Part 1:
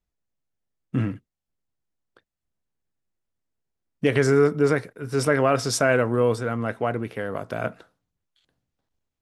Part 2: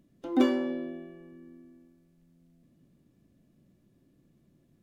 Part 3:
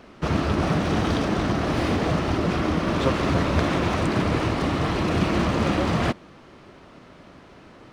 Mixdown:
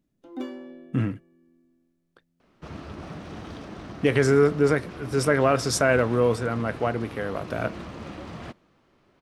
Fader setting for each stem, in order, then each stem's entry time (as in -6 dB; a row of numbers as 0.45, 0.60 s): -0.5, -10.5, -16.0 dB; 0.00, 0.00, 2.40 s